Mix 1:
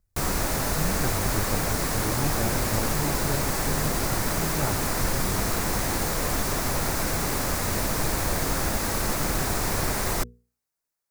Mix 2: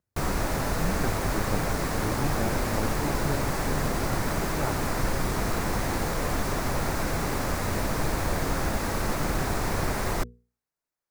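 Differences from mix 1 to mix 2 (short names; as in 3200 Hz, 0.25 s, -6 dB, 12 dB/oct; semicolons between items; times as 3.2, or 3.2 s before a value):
speech: add HPF 150 Hz; master: add high shelf 4100 Hz -9.5 dB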